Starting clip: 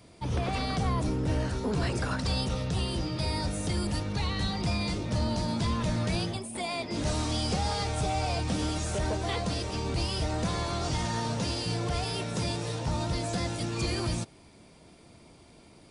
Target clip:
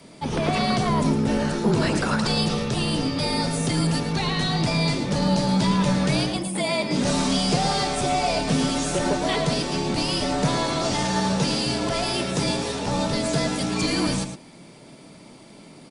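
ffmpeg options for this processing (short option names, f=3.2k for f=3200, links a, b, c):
-filter_complex "[0:a]afreqshift=-40,lowshelf=f=110:t=q:w=1.5:g=-13.5,asplit=2[a][b];[b]adelay=110.8,volume=-8dB,highshelf=f=4k:g=-2.49[c];[a][c]amix=inputs=2:normalize=0,volume=8dB"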